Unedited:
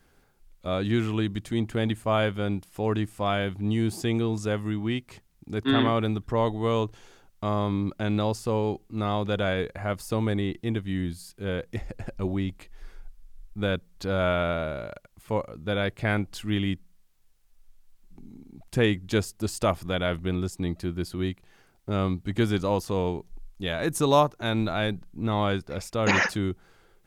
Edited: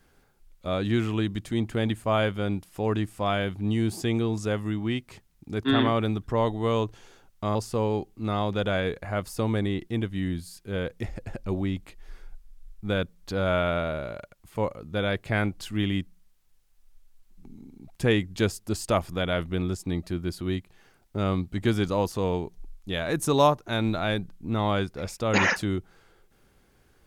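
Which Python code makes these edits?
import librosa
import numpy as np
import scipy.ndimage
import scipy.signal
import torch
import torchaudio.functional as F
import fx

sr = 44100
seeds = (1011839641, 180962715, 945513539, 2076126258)

y = fx.edit(x, sr, fx.cut(start_s=7.55, length_s=0.73), tone=tone)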